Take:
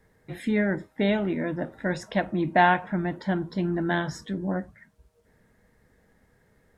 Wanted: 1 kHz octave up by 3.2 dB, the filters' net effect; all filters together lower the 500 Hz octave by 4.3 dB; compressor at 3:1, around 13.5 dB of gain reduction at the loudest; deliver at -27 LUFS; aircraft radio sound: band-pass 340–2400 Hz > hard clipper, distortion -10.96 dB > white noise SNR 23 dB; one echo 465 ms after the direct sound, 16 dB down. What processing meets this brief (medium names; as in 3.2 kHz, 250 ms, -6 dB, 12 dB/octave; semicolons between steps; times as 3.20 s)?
peaking EQ 500 Hz -9 dB; peaking EQ 1 kHz +8.5 dB; compression 3:1, threshold -30 dBFS; band-pass 340–2400 Hz; delay 465 ms -16 dB; hard clipper -29 dBFS; white noise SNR 23 dB; trim +11.5 dB